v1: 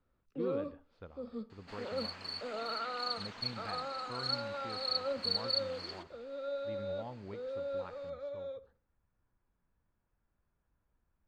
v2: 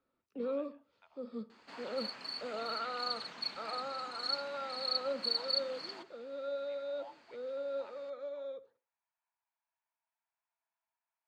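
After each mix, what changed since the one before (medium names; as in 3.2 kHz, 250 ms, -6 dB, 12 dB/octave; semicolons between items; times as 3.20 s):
speech: add rippled Chebyshev high-pass 640 Hz, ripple 9 dB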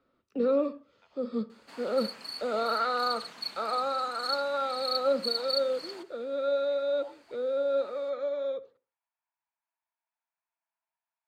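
first sound +10.5 dB; second sound: remove boxcar filter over 4 samples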